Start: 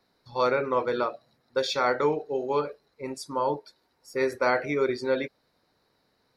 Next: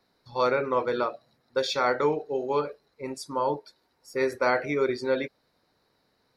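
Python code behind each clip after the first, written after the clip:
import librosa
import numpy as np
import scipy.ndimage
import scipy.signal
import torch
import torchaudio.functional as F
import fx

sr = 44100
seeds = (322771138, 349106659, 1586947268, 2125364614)

y = x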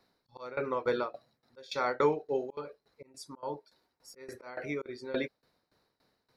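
y = fx.auto_swell(x, sr, attack_ms=344.0)
y = fx.tremolo_shape(y, sr, shape='saw_down', hz=3.5, depth_pct=90)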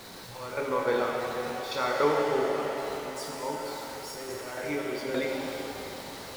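y = x + 0.5 * 10.0 ** (-41.0 / 20.0) * np.sign(x)
y = fx.rev_shimmer(y, sr, seeds[0], rt60_s=3.3, semitones=7, shimmer_db=-8, drr_db=-1.5)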